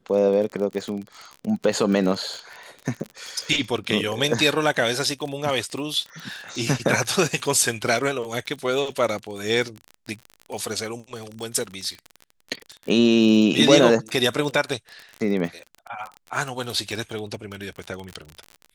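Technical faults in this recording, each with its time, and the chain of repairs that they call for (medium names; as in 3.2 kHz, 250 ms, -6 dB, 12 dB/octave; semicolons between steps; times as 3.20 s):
crackle 35 per s -28 dBFS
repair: de-click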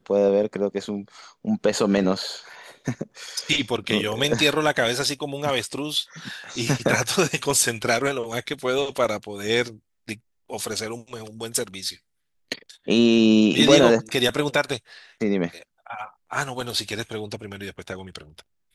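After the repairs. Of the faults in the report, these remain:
nothing left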